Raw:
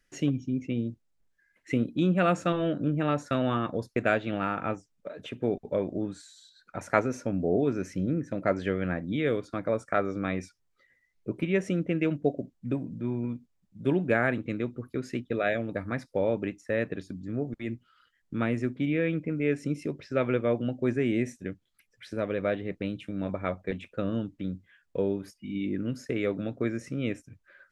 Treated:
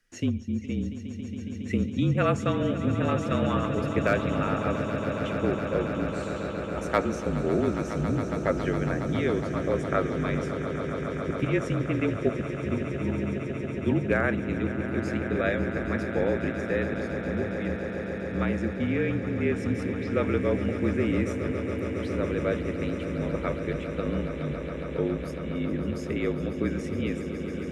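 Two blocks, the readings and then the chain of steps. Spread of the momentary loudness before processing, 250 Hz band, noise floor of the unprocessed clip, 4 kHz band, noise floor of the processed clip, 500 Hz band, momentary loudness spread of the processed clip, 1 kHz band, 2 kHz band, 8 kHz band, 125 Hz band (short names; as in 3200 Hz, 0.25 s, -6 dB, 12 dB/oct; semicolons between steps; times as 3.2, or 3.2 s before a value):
10 LU, +2.0 dB, -73 dBFS, +2.0 dB, -35 dBFS, +1.5 dB, 6 LU, +1.5 dB, +2.0 dB, n/a, +4.0 dB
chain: overloaded stage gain 12.5 dB; frequency shift -38 Hz; swelling echo 0.138 s, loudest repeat 8, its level -13 dB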